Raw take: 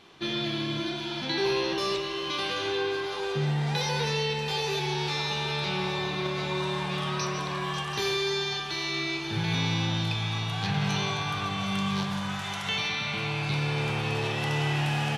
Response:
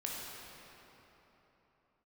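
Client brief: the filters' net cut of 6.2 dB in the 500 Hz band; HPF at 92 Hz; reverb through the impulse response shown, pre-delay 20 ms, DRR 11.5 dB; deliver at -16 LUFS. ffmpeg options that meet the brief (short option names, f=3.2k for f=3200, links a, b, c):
-filter_complex "[0:a]highpass=92,equalizer=f=500:t=o:g=-9,asplit=2[a][b];[1:a]atrim=start_sample=2205,adelay=20[c];[b][c]afir=irnorm=-1:irlink=0,volume=-13.5dB[d];[a][d]amix=inputs=2:normalize=0,volume=13.5dB"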